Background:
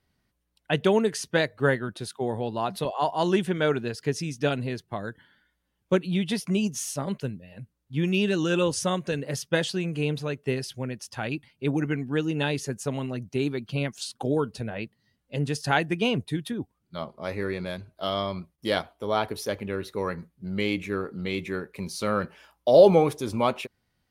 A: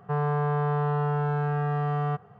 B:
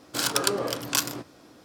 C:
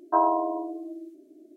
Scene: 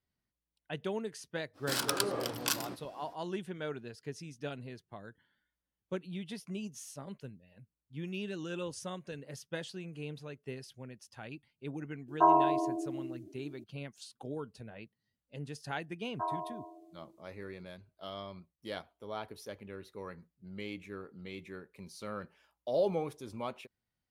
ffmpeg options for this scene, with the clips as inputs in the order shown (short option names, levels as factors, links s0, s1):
-filter_complex "[3:a]asplit=2[s0][s1];[0:a]volume=0.178[s2];[2:a]equalizer=f=6800:w=3.5:g=-4.5[s3];[s0]equalizer=f=540:w=6.2:g=-12.5[s4];[s1]highpass=f=1400:p=1[s5];[s3]atrim=end=1.64,asetpts=PTS-STARTPTS,volume=0.473,afade=t=in:d=0.05,afade=t=out:st=1.59:d=0.05,adelay=1530[s6];[s4]atrim=end=1.56,asetpts=PTS-STARTPTS,volume=0.891,afade=t=in:d=0.004:c=hsin,afade=t=out:st=1.556:d=0.004:c=hsin,adelay=12080[s7];[s5]atrim=end=1.56,asetpts=PTS-STARTPTS,volume=0.376,afade=t=in:d=0.004:c=hsin,afade=t=out:st=1.556:d=0.004:c=hsin,adelay=16070[s8];[s2][s6][s7][s8]amix=inputs=4:normalize=0"